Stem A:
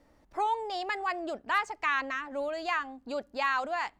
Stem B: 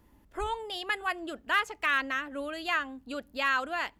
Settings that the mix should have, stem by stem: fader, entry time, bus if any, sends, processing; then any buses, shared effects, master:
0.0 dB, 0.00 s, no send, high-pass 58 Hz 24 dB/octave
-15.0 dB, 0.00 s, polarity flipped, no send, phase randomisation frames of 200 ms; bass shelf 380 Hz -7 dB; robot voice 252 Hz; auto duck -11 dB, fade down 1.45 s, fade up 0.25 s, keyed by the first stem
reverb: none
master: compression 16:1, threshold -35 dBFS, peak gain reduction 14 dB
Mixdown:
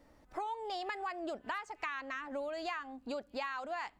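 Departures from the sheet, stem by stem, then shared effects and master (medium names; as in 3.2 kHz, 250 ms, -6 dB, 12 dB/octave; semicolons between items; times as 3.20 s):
stem A: missing high-pass 58 Hz 24 dB/octave; stem B: polarity flipped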